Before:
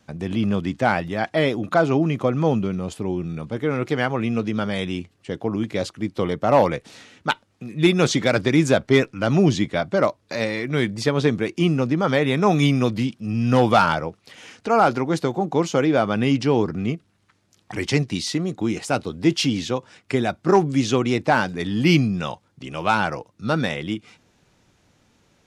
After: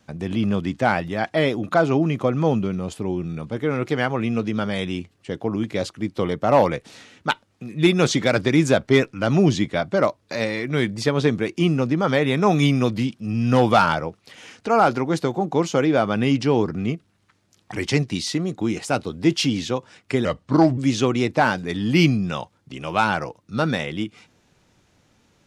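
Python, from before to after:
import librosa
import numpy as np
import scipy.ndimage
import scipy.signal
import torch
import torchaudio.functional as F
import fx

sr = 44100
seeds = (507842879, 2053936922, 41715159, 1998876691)

y = fx.edit(x, sr, fx.speed_span(start_s=20.25, length_s=0.43, speed=0.82), tone=tone)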